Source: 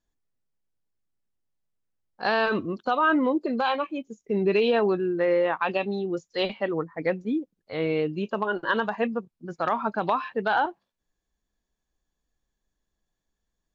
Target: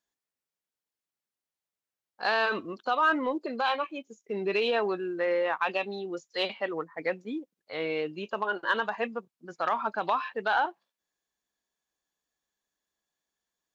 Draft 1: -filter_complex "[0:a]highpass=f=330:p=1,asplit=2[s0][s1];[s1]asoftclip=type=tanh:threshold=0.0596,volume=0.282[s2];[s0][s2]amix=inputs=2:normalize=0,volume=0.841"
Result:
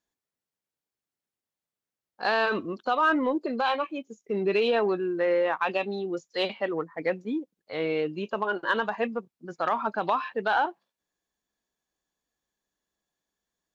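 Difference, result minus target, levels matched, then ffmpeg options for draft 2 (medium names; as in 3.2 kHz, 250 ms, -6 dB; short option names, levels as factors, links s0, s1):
250 Hz band +3.0 dB
-filter_complex "[0:a]highpass=f=750:p=1,asplit=2[s0][s1];[s1]asoftclip=type=tanh:threshold=0.0596,volume=0.282[s2];[s0][s2]amix=inputs=2:normalize=0,volume=0.841"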